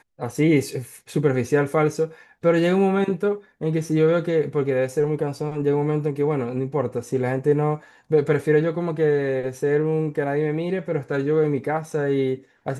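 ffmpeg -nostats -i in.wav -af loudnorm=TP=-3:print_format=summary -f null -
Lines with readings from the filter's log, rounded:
Input Integrated:    -22.8 LUFS
Input True Peak:      -6.9 dBTP
Input LRA:             2.2 LU
Input Threshold:     -32.8 LUFS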